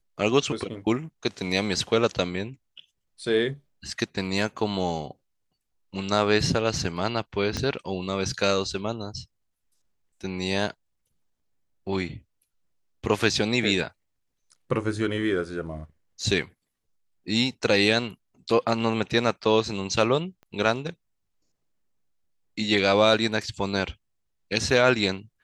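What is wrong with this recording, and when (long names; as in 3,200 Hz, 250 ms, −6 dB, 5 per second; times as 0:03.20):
0:07.57: click −14 dBFS
0:20.43: click −35 dBFS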